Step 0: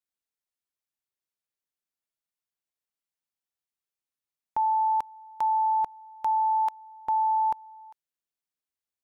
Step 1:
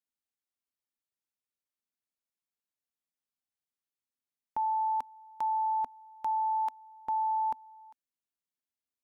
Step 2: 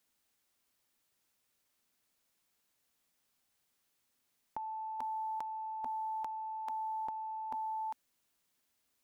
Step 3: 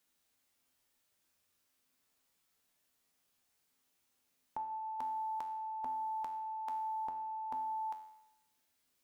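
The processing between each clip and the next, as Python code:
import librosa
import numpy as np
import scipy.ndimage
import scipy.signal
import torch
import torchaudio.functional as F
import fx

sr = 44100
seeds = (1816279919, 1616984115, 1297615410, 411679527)

y1 = fx.peak_eq(x, sr, hz=250.0, db=8.0, octaves=0.42)
y1 = y1 * 10.0 ** (-5.5 / 20.0)
y2 = fx.over_compress(y1, sr, threshold_db=-38.0, ratio=-0.5)
y2 = y2 * 10.0 ** (4.0 / 20.0)
y3 = fx.comb_fb(y2, sr, f0_hz=87.0, decay_s=0.86, harmonics='all', damping=0.0, mix_pct=80)
y3 = y3 * 10.0 ** (10.5 / 20.0)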